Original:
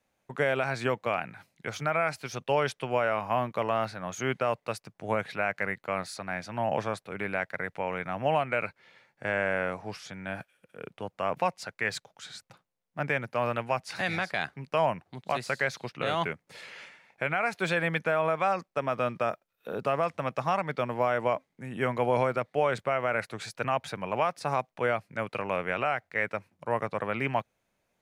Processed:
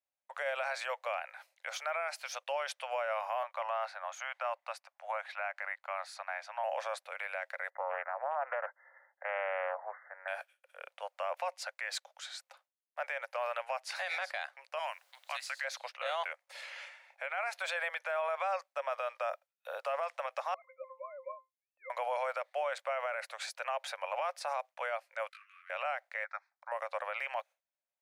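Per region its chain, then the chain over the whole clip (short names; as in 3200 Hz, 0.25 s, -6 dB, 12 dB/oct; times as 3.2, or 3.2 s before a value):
3.43–6.64 HPF 730 Hz 24 dB/oct + tilt -3 dB/oct
7.7–10.28 dynamic EQ 370 Hz, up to +6 dB, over -40 dBFS, Q 1.2 + brick-wall FIR low-pass 2100 Hz + Doppler distortion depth 0.3 ms
14.78–15.63 HPF 1500 Hz + added noise pink -67 dBFS
20.54–21.9 sine-wave speech + HPF 760 Hz 6 dB/oct + octave resonator C, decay 0.18 s
25.29–25.7 compressor 12:1, threshold -42 dBFS + brick-wall FIR high-pass 1100 Hz + detuned doubles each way 28 cents
26.24–26.72 upward compressor, threshold -45 dBFS + speaker cabinet 230–5000 Hz, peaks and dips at 360 Hz -7 dB, 630 Hz -7 dB, 1000 Hz -8 dB + fixed phaser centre 1200 Hz, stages 4
whole clip: gate with hold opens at -55 dBFS; Chebyshev high-pass 540 Hz, order 6; limiter -26 dBFS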